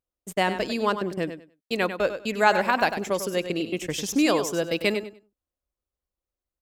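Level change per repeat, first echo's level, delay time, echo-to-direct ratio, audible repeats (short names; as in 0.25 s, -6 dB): -14.0 dB, -10.0 dB, 98 ms, -10.0 dB, 2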